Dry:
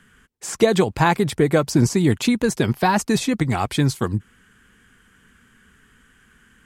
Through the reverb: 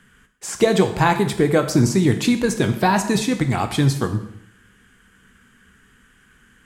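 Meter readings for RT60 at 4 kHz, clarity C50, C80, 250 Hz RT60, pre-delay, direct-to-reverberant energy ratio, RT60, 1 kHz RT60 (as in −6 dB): 0.70 s, 10.5 dB, 13.0 dB, 0.75 s, 6 ms, 7.0 dB, 0.75 s, 0.80 s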